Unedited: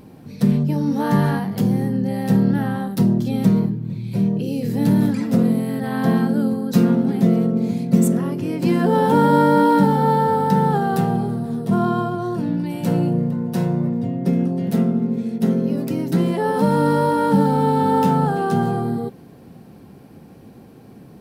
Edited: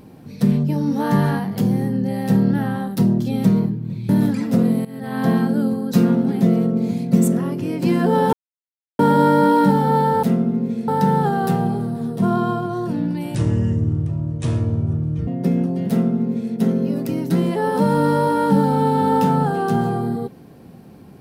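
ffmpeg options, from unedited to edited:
-filter_complex "[0:a]asplit=8[a][b][c][d][e][f][g][h];[a]atrim=end=4.092[i];[b]atrim=start=4.888:end=5.65,asetpts=PTS-STARTPTS,afade=t=out:st=0.758:d=0.004:c=hsin:silence=0.16788[j];[c]atrim=start=5.65:end=9.13,asetpts=PTS-STARTPTS,afade=t=in:d=0.38:silence=0.16788,afade=t=out:st=3.476:d=0.004:c=hsin,apad=pad_dur=0.66[k];[d]atrim=start=9.13:end=10.372,asetpts=PTS-STARTPTS,afade=t=in:d=0.004:c=hsin[l];[e]atrim=start=14.708:end=15.362[m];[f]atrim=start=10.368:end=12.844[n];[g]atrim=start=12.84:end=14.09,asetpts=PTS-STARTPTS,asetrate=28665,aresample=44100[o];[h]atrim=start=14.086[p];[j][k][l]concat=n=3:v=0:a=1[q];[i][q]acrossfade=d=0.004:c1=hsin:c2=hsin[r];[r][m]acrossfade=d=0.004:c1=hsin:c2=hsin[s];[s][n]acrossfade=d=0.004:c1=hsin:c2=hsin[t];[t][o]acrossfade=d=0.004:c1=hsin:c2=hsin[u];[u][p]acrossfade=d=0.004:c1=hsin:c2=hsin"

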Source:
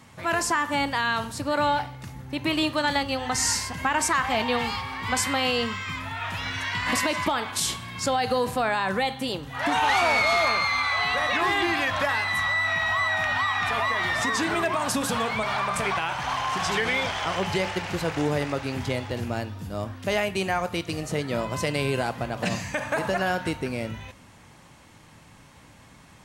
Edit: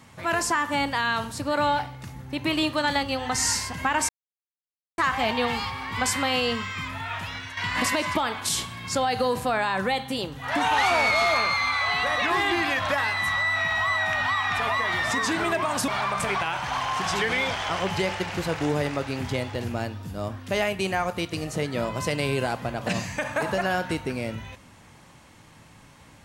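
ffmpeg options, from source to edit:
-filter_complex "[0:a]asplit=4[a][b][c][d];[a]atrim=end=4.09,asetpts=PTS-STARTPTS,afade=t=out:st=4.086:d=0.004:c=hsin,apad=pad_dur=0.89[e];[b]atrim=start=4.09:end=6.68,asetpts=PTS-STARTPTS,afade=t=in:d=0.004:c=hsin,afade=t=out:st=2.12:d=0.47:silence=0.316228[f];[c]atrim=start=6.68:end=14.992,asetpts=PTS-STARTPTS,afade=t=in:d=0.004:c=hsin:silence=0.316228[g];[d]atrim=start=15.438[h];[e][f][g]concat=n=3:v=0:a=1[i];[i][h]acrossfade=d=0.004:c1=hsin:c2=hsin"

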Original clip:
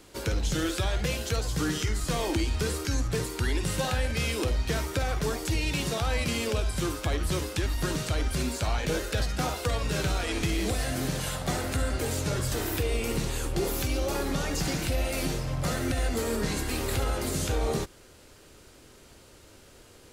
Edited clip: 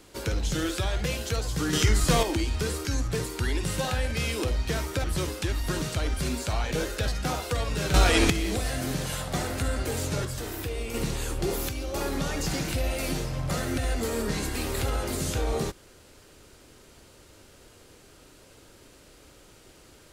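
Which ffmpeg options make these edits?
-filter_complex "[0:a]asplit=10[a][b][c][d][e][f][g][h][i][j];[a]atrim=end=1.732[k];[b]atrim=start=1.728:end=2.232,asetpts=PTS-STARTPTS,volume=7dB[l];[c]atrim=start=2.228:end=5.042[m];[d]atrim=start=7.178:end=10.082[n];[e]atrim=start=10.078:end=10.442,asetpts=PTS-STARTPTS,volume=9.5dB[o];[f]atrim=start=10.438:end=12.392[p];[g]atrim=start=12.388:end=13.082,asetpts=PTS-STARTPTS,volume=-4.5dB[q];[h]atrim=start=13.078:end=13.832[r];[i]atrim=start=13.828:end=14.082,asetpts=PTS-STARTPTS,volume=-5dB[s];[j]atrim=start=14.078[t];[k][l]acrossfade=d=0.004:c1=hsin:c2=hsin[u];[u][m]acrossfade=d=0.004:c1=hsin:c2=hsin[v];[v][n]acrossfade=d=0.004:c1=hsin:c2=hsin[w];[w][o]acrossfade=d=0.004:c1=hsin:c2=hsin[x];[x][p]acrossfade=d=0.004:c1=hsin:c2=hsin[y];[y][q]acrossfade=d=0.004:c1=hsin:c2=hsin[z];[z][r]acrossfade=d=0.004:c1=hsin:c2=hsin[aa];[aa][s]acrossfade=d=0.004:c1=hsin:c2=hsin[ab];[ab][t]acrossfade=d=0.004:c1=hsin:c2=hsin"

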